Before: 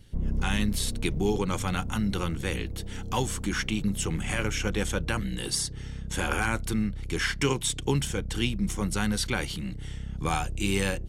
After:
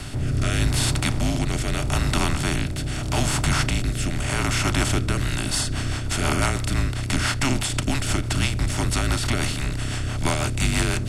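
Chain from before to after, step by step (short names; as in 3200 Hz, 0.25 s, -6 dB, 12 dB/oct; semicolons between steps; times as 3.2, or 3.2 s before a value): per-bin compression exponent 0.4; frequency shift -150 Hz; rotary speaker horn 0.8 Hz, later 6 Hz, at 4.88; gain +1 dB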